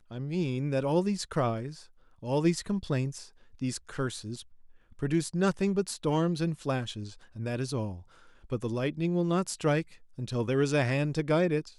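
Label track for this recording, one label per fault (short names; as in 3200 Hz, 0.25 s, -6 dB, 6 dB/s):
4.360000	4.360000	gap 2.6 ms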